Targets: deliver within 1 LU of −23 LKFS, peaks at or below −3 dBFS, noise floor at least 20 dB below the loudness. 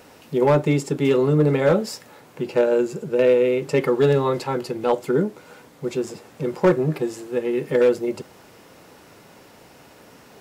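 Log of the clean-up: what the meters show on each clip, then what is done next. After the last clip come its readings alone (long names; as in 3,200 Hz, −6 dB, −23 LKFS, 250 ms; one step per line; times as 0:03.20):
share of clipped samples 0.9%; peaks flattened at −10.0 dBFS; integrated loudness −21.0 LKFS; sample peak −10.0 dBFS; target loudness −23.0 LKFS
→ clipped peaks rebuilt −10 dBFS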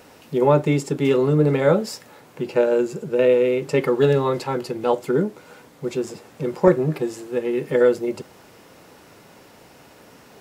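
share of clipped samples 0.0%; integrated loudness −20.5 LKFS; sample peak −2.0 dBFS; target loudness −23.0 LKFS
→ level −2.5 dB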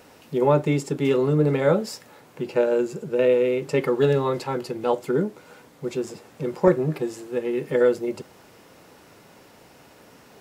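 integrated loudness −23.0 LKFS; sample peak −4.5 dBFS; background noise floor −52 dBFS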